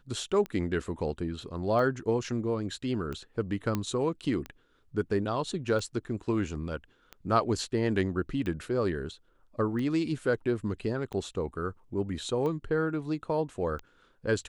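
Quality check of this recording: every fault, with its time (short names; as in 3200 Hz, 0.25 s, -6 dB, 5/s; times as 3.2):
tick 45 rpm -24 dBFS
3.75 pop -16 dBFS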